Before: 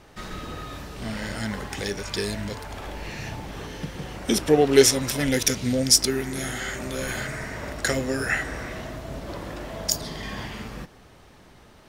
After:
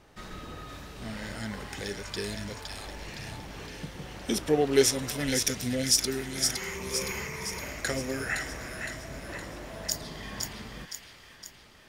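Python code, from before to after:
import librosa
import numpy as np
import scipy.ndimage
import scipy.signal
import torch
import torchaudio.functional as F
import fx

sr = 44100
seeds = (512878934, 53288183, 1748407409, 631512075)

p1 = fx.ripple_eq(x, sr, per_octave=0.8, db=15, at=(6.55, 7.59))
p2 = p1 + fx.echo_wet_highpass(p1, sr, ms=514, feedback_pct=54, hz=1700.0, wet_db=-4.0, dry=0)
y = F.gain(torch.from_numpy(p2), -6.5).numpy()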